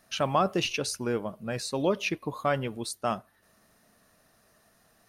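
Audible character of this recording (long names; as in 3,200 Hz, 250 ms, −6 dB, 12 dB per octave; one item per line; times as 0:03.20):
background noise floor −65 dBFS
spectral slope −4.0 dB per octave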